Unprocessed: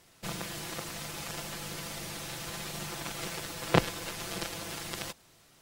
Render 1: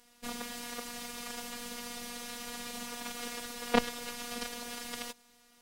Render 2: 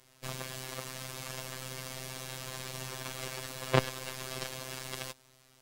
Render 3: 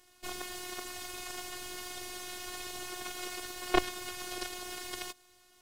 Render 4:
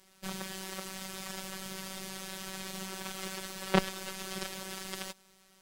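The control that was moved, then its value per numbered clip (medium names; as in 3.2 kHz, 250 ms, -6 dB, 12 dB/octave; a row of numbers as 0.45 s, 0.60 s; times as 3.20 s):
robot voice, frequency: 240 Hz, 130 Hz, 360 Hz, 190 Hz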